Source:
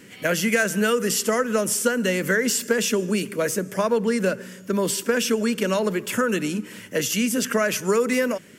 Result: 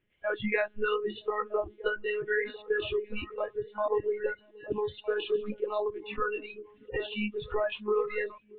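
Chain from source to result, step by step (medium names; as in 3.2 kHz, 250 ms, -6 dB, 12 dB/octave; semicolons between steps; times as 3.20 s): monotone LPC vocoder at 8 kHz 210 Hz; spectral noise reduction 24 dB; repeats whose band climbs or falls 630 ms, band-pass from 220 Hz, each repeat 1.4 oct, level -10 dB; trim -6 dB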